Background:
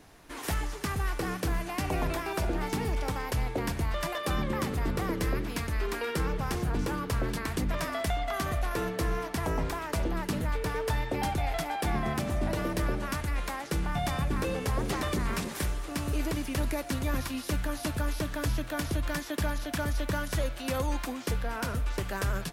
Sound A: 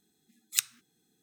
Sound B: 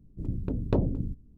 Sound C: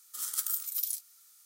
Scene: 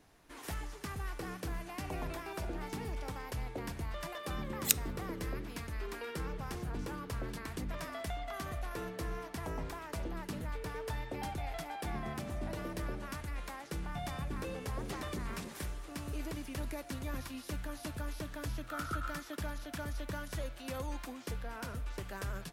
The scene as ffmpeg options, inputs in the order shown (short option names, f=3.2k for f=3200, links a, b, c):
-filter_complex "[0:a]volume=-9.5dB[a];[1:a]equalizer=f=13k:w=1.5:g=6.5[b];[3:a]lowpass=f=1.4k:t=q:w=8.5[c];[b]atrim=end=1.22,asetpts=PTS-STARTPTS,volume=-2.5dB,afade=t=in:d=0.004:c=hsin,afade=t=out:st=1.216:d=0.004:c=hsin,adelay=4120[d];[c]atrim=end=1.45,asetpts=PTS-STARTPTS,volume=-2.5dB,afade=t=in:d=0.004:c=hsin,afade=t=out:st=1.446:d=0.004:c=hsin,adelay=18550[e];[a][d][e]amix=inputs=3:normalize=0"